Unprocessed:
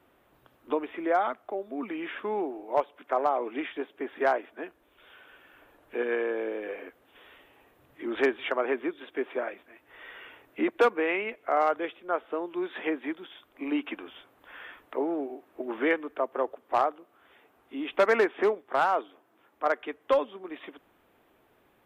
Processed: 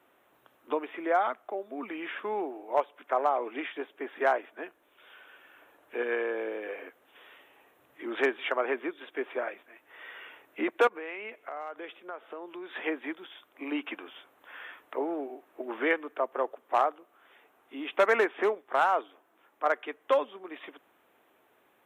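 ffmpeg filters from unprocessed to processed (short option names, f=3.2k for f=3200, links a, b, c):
-filter_complex "[0:a]asettb=1/sr,asplit=3[a][b][c];[a]atrim=end=10.874[d];[b]atrim=start=10.87:end=12.7,asetpts=PTS-STARTPTS,afade=t=in:d=0.004:c=qsin,afade=t=out:st=1.826:d=0.004:c=qsin,acompressor=threshold=-35dB:ratio=6:attack=3.2:release=140:knee=1:detection=peak[e];[c]atrim=start=12.696[f];[d][e]acrossfade=d=0.004:c1=hsin:c2=qsin[g];[g][f]acrossfade=d=0.004:c1=qsin:c2=hsin,highpass=f=460:p=1,equalizer=f=4.7k:w=4.6:g=-12,volume=1dB"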